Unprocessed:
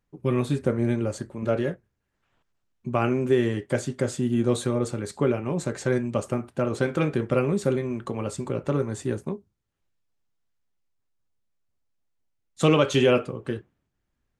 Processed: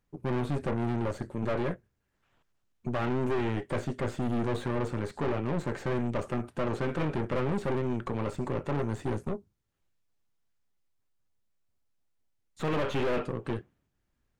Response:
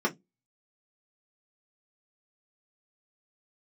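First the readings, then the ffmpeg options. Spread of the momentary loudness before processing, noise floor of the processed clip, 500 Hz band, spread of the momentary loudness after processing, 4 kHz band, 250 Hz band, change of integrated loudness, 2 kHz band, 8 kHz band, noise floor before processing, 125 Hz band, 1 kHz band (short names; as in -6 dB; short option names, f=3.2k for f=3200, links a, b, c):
10 LU, -78 dBFS, -7.5 dB, 5 LU, -10.0 dB, -6.0 dB, -6.5 dB, -5.0 dB, -14.5 dB, -78 dBFS, -5.0 dB, -2.5 dB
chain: -filter_complex "[0:a]aeval=exprs='(tanh(35.5*val(0)+0.7)-tanh(0.7))/35.5':c=same,acrossover=split=3000[a][b];[b]acompressor=threshold=-58dB:ratio=4:attack=1:release=60[c];[a][c]amix=inputs=2:normalize=0,volume=4dB"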